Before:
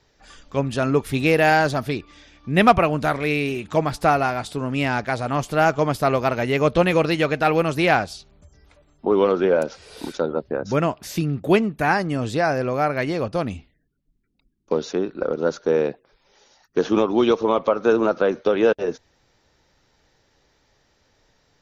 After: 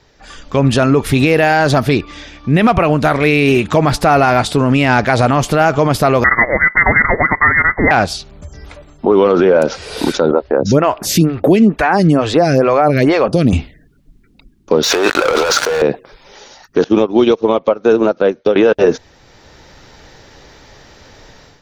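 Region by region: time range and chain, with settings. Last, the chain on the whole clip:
6.24–7.91 G.711 law mismatch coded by A + steep high-pass 540 Hz 72 dB/oct + inverted band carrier 2600 Hz
10.31–13.53 compressor 2:1, threshold -27 dBFS + photocell phaser 2.2 Hz
14.83–15.82 HPF 970 Hz + sample leveller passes 5 + negative-ratio compressor -31 dBFS
16.84–18.56 bell 1200 Hz -5.5 dB 0.96 oct + upward expander 2.5:1, over -29 dBFS
whole clip: high shelf 7100 Hz -5 dB; AGC; maximiser +11.5 dB; gain -1 dB

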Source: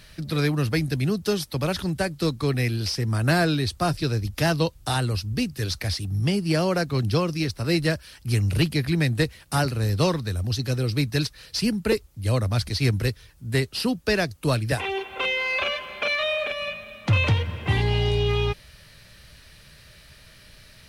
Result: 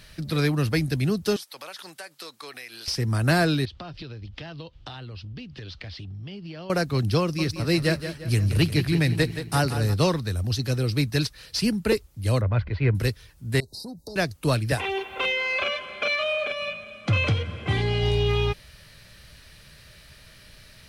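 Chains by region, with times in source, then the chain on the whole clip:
1.36–2.88 HPF 790 Hz + compressor 5:1, threshold -36 dBFS
3.65–6.7 LPF 4500 Hz 24 dB/oct + bell 3100 Hz +7.5 dB 0.42 oct + compressor 20:1, threshold -34 dBFS
7.21–9.94 feedback echo 0.174 s, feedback 49%, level -10 dB + mismatched tape noise reduction decoder only
12.41–12.95 LPF 2400 Hz 24 dB/oct + comb 2 ms, depth 34%
13.6–14.16 compressor 10:1, threshold -33 dBFS + brick-wall FIR band-stop 1000–3700 Hz + core saturation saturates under 320 Hz
15.32–18.03 LPF 10000 Hz 24 dB/oct + notch comb 910 Hz
whole clip: dry

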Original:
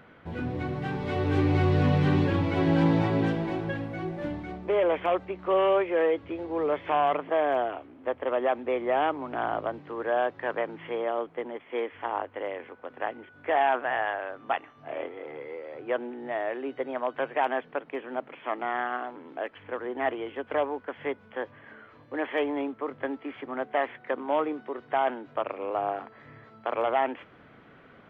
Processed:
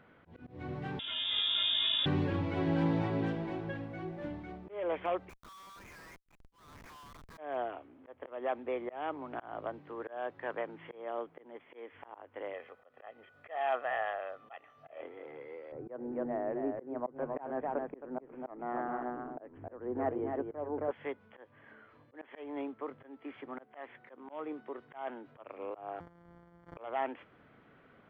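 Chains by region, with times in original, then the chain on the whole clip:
0.99–2.06 block floating point 5-bit + inverted band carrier 3600 Hz
5.29–7.38 Chebyshev band-pass 1000–2500 Hz, order 4 + compressor 10:1, threshold -38 dBFS + Schmitt trigger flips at -46 dBFS
12.53–15.01 tone controls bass -6 dB, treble +8 dB + comb 1.6 ms, depth 56%
15.72–20.91 LPF 1600 Hz + tilt -4 dB/oct + echo 0.268 s -5 dB
26–26.77 sample sorter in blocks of 256 samples + polynomial smoothing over 41 samples
whole clip: high shelf 4600 Hz -5 dB; auto swell 0.239 s; gain -7.5 dB

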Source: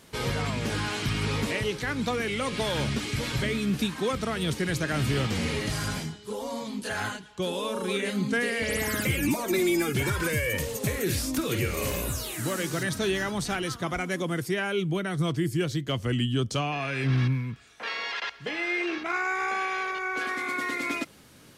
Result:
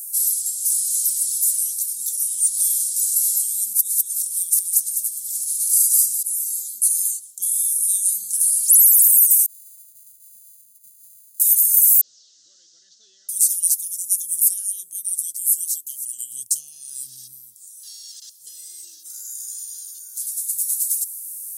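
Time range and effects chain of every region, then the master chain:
3.73–6.23 negative-ratio compressor -33 dBFS + echo with dull and thin repeats by turns 0.101 s, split 1800 Hz, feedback 56%, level -3 dB
9.46–11.4 sample sorter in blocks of 64 samples + running mean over 16 samples + resonator 220 Hz, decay 0.19 s, mix 90%
12.01–13.29 delta modulation 32 kbps, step -31.5 dBFS + BPF 540–2900 Hz + tilt -2.5 dB/oct
14.55–16.31 HPF 280 Hz + notches 50/100/150/200/250/300/350/400/450 Hz
whole clip: inverse Chebyshev high-pass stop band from 2500 Hz, stop band 70 dB; maximiser +35 dB; gain -2.5 dB

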